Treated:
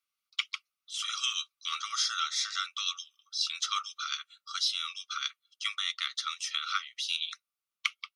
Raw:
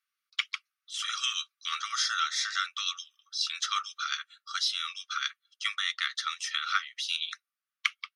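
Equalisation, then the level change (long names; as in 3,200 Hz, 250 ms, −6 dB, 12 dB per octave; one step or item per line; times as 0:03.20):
parametric band 1,700 Hz −15 dB 0.32 octaves
0.0 dB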